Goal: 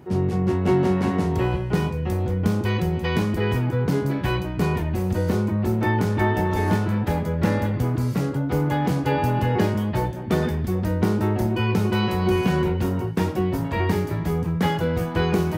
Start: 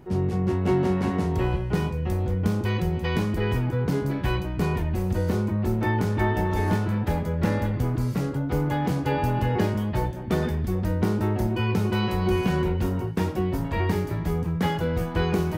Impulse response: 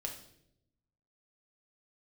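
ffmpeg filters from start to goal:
-af "highpass=77,volume=3dB"

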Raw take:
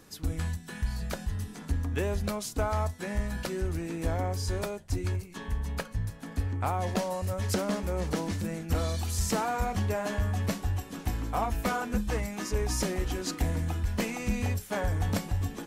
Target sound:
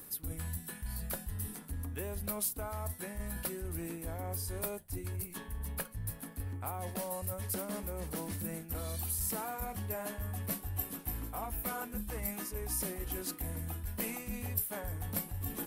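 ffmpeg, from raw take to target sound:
ffmpeg -i in.wav -af "areverse,acompressor=threshold=-36dB:ratio=6,areverse,aexciter=amount=9.5:drive=4.2:freq=9200,volume=-1dB" out.wav

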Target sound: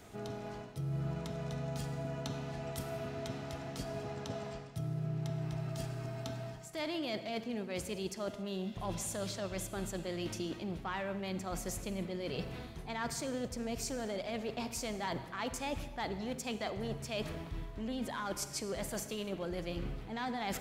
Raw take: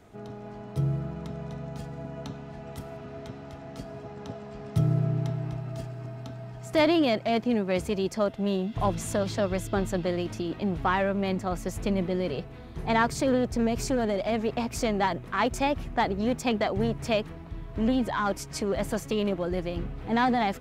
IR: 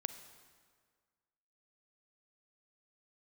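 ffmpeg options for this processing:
-filter_complex "[0:a]highshelf=frequency=2600:gain=10,areverse,acompressor=threshold=-34dB:ratio=10,areverse[link_01];[1:a]atrim=start_sample=2205,afade=type=out:start_time=0.34:duration=0.01,atrim=end_sample=15435[link_02];[link_01][link_02]afir=irnorm=-1:irlink=0"

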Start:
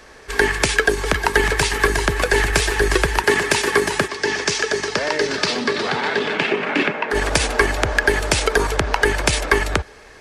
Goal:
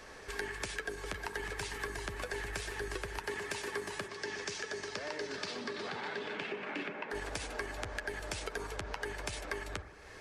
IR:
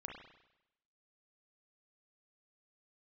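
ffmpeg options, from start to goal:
-filter_complex "[0:a]acompressor=threshold=-35dB:ratio=3,asplit=2[link_01][link_02];[1:a]atrim=start_sample=2205,asetrate=28665,aresample=44100,adelay=10[link_03];[link_02][link_03]afir=irnorm=-1:irlink=0,volume=-8dB[link_04];[link_01][link_04]amix=inputs=2:normalize=0,volume=-7dB"

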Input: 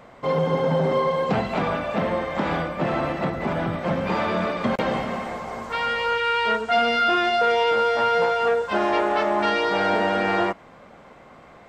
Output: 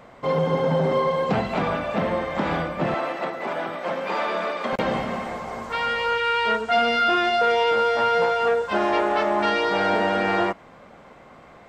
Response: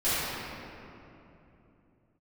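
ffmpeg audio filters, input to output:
-filter_complex "[0:a]asettb=1/sr,asplit=3[link_01][link_02][link_03];[link_01]atrim=end=2.944[link_04];[link_02]atrim=start=2.94:end=4.73,asetpts=PTS-STARTPTS,afade=type=in:duration=0.004:curve=qsin,afade=type=out:start_time=1.786:duration=0.004:curve=qsin,highpass=410[link_05];[link_03]atrim=start=4.726[link_06];[link_04][link_05]acrossfade=duration=0.004:curve1=hsin:curve2=qsin[link_07];[link_07][link_06]acrossfade=duration=0.004:curve1=qsin:curve2=hsin"

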